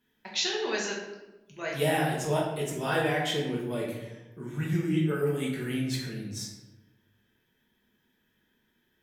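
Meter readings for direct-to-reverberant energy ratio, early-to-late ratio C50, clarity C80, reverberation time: -4.0 dB, 3.0 dB, 5.5 dB, 1.1 s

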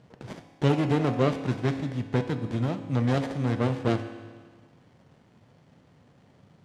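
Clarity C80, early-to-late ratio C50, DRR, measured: 10.5 dB, 9.0 dB, 7.0 dB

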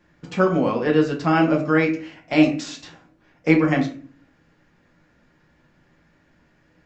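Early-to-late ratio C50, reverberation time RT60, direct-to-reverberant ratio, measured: 9.5 dB, 0.45 s, 0.5 dB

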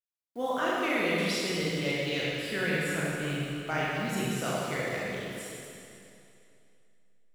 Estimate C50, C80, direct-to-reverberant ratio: -3.5 dB, -2.0 dB, -7.0 dB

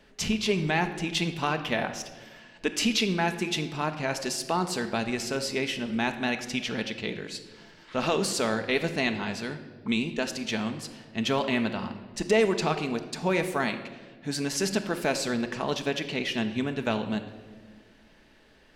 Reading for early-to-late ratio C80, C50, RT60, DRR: 12.0 dB, 10.5 dB, 1.5 s, 7.0 dB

